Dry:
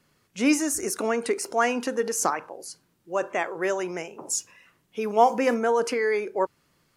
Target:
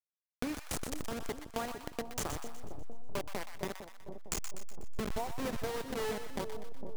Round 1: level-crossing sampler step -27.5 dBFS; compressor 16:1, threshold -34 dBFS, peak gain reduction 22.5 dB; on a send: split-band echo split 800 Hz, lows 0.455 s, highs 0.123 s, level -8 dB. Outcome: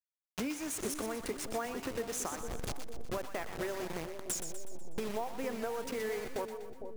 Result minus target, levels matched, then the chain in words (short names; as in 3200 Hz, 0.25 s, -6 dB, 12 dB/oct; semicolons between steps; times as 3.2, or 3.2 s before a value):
level-crossing sampler: distortion -12 dB
level-crossing sampler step -17.5 dBFS; compressor 16:1, threshold -34 dBFS, peak gain reduction 22 dB; on a send: split-band echo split 800 Hz, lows 0.455 s, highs 0.123 s, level -8 dB